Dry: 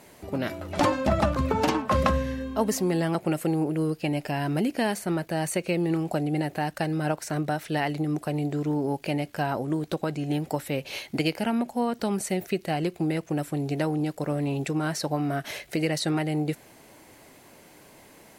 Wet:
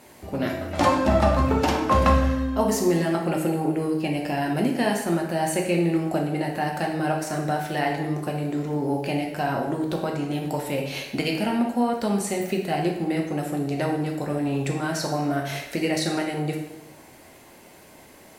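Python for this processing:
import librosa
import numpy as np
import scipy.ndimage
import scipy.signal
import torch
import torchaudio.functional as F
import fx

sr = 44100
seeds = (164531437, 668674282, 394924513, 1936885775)

y = fx.rev_plate(x, sr, seeds[0], rt60_s=0.98, hf_ratio=0.75, predelay_ms=0, drr_db=0.0)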